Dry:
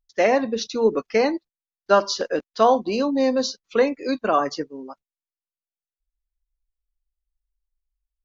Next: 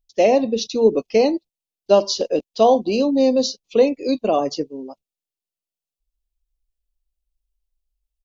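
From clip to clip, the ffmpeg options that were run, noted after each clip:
-af "firequalizer=gain_entry='entry(650,0);entry(1500,-23);entry(2600,-1)':delay=0.05:min_phase=1,volume=1.58"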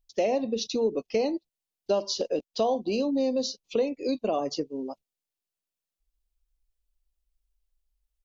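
-af "acompressor=threshold=0.0398:ratio=2.5"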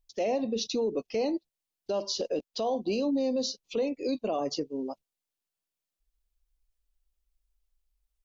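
-af "alimiter=limit=0.0841:level=0:latency=1:release=19"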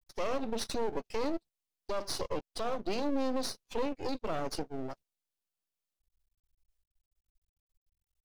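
-af "aeval=exprs='max(val(0),0)':c=same"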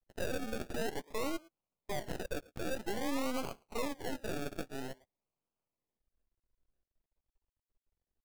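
-filter_complex "[0:a]asplit=2[s0][s1];[s1]adelay=110,highpass=300,lowpass=3400,asoftclip=type=hard:threshold=0.0316,volume=0.0891[s2];[s0][s2]amix=inputs=2:normalize=0,acrusher=samples=34:mix=1:aa=0.000001:lfo=1:lforange=20.4:lforate=0.5,volume=0.668"

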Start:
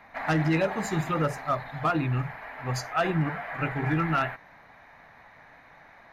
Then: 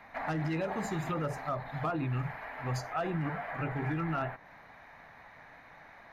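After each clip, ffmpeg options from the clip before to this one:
-filter_complex "[0:a]acrossover=split=1100[s0][s1];[s0]alimiter=level_in=1.26:limit=0.0631:level=0:latency=1,volume=0.794[s2];[s1]acompressor=threshold=0.00794:ratio=4[s3];[s2][s3]amix=inputs=2:normalize=0,volume=0.891"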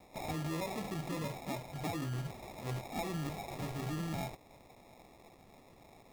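-af "acrusher=samples=29:mix=1:aa=0.000001,volume=0.562"

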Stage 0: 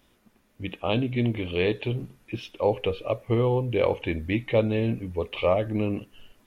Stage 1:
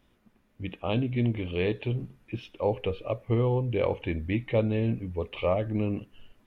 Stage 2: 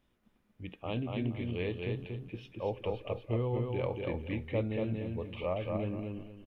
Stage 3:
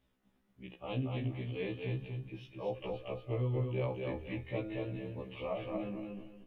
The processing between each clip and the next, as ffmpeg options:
-af "bass=f=250:g=4,treble=f=4000:g=-7,volume=0.631"
-af "aecho=1:1:234|468|702|936:0.668|0.187|0.0524|0.0147,volume=0.398"
-af "bandreject=f=175.2:t=h:w=4,bandreject=f=350.4:t=h:w=4,bandreject=f=525.6:t=h:w=4,bandreject=f=700.8:t=h:w=4,bandreject=f=876:t=h:w=4,bandreject=f=1051.2:t=h:w=4,bandreject=f=1226.4:t=h:w=4,bandreject=f=1401.6:t=h:w=4,bandreject=f=1576.8:t=h:w=4,bandreject=f=1752:t=h:w=4,bandreject=f=1927.2:t=h:w=4,bandreject=f=2102.4:t=h:w=4,bandreject=f=2277.6:t=h:w=4,bandreject=f=2452.8:t=h:w=4,bandreject=f=2628:t=h:w=4,bandreject=f=2803.2:t=h:w=4,bandreject=f=2978.4:t=h:w=4,bandreject=f=3153.6:t=h:w=4,bandreject=f=3328.8:t=h:w=4,bandreject=f=3504:t=h:w=4,bandreject=f=3679.2:t=h:w=4,bandreject=f=3854.4:t=h:w=4,bandreject=f=4029.6:t=h:w=4,bandreject=f=4204.8:t=h:w=4,bandreject=f=4380:t=h:w=4,bandreject=f=4555.2:t=h:w=4,bandreject=f=4730.4:t=h:w=4,bandreject=f=4905.6:t=h:w=4,afftfilt=real='re*1.73*eq(mod(b,3),0)':imag='im*1.73*eq(mod(b,3),0)':win_size=2048:overlap=0.75"

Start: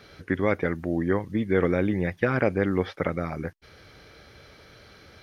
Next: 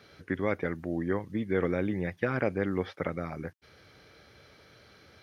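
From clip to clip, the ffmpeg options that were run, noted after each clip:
-af "highpass=72,volume=0.531"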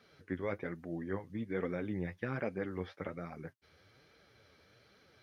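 -af "flanger=delay=3.7:depth=9:regen=33:speed=1.2:shape=triangular,volume=0.596"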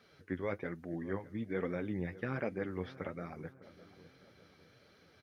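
-filter_complex "[0:a]asplit=2[s0][s1];[s1]adelay=605,lowpass=f=1700:p=1,volume=0.141,asplit=2[s2][s3];[s3]adelay=605,lowpass=f=1700:p=1,volume=0.49,asplit=2[s4][s5];[s5]adelay=605,lowpass=f=1700:p=1,volume=0.49,asplit=2[s6][s7];[s7]adelay=605,lowpass=f=1700:p=1,volume=0.49[s8];[s0][s2][s4][s6][s8]amix=inputs=5:normalize=0"

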